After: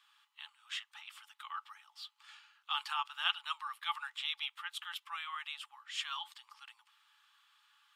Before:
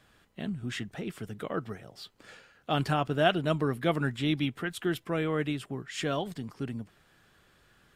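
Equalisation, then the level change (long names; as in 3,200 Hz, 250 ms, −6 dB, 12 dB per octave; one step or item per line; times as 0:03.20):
Chebyshev high-pass with heavy ripple 830 Hz, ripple 9 dB
+1.0 dB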